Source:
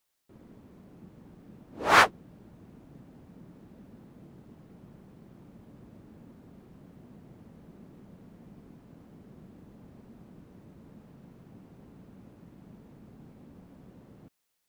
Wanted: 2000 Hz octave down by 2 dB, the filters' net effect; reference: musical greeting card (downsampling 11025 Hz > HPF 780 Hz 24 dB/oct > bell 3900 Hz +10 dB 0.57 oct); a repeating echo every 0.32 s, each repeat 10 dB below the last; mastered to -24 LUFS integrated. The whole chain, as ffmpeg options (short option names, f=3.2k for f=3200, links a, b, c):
-af "equalizer=f=2k:t=o:g=-3.5,aecho=1:1:320|640|960|1280:0.316|0.101|0.0324|0.0104,aresample=11025,aresample=44100,highpass=f=780:w=0.5412,highpass=f=780:w=1.3066,equalizer=f=3.9k:t=o:w=0.57:g=10,volume=1.5dB"